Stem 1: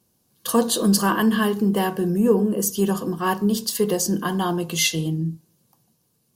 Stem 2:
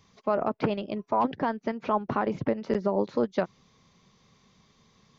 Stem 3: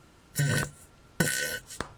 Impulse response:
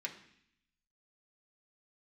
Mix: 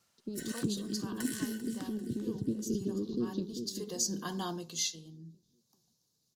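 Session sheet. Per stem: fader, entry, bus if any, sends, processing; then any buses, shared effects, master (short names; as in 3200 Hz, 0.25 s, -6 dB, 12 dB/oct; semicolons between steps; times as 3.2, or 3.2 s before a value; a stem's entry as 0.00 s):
-14.0 dB, 0.00 s, no send, no echo send, band shelf 5100 Hz +12.5 dB 1.2 oct; auto duck -13 dB, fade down 0.55 s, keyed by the second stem
-3.5 dB, 0.00 s, no send, echo send -7 dB, elliptic band-stop 350–3700 Hz, stop band 40 dB; gate with hold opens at -52 dBFS
-19.5 dB, 0.00 s, no send, echo send -13 dB, steep high-pass 470 Hz; high shelf 3200 Hz +11 dB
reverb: off
echo: feedback echo 0.393 s, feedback 45%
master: dry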